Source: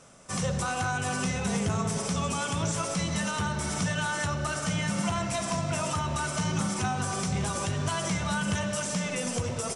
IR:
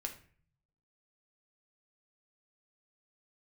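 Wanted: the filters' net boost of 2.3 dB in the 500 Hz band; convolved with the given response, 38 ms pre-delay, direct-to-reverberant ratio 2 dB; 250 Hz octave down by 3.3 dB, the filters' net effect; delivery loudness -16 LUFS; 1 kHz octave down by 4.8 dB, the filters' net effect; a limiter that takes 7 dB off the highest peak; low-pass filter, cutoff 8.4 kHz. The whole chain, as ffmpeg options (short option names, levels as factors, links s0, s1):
-filter_complex "[0:a]lowpass=8400,equalizer=f=250:t=o:g=-6.5,equalizer=f=500:t=o:g=7,equalizer=f=1000:t=o:g=-8.5,alimiter=level_in=1.12:limit=0.0631:level=0:latency=1,volume=0.891,asplit=2[s0][s1];[1:a]atrim=start_sample=2205,adelay=38[s2];[s1][s2]afir=irnorm=-1:irlink=0,volume=0.891[s3];[s0][s3]amix=inputs=2:normalize=0,volume=5.96"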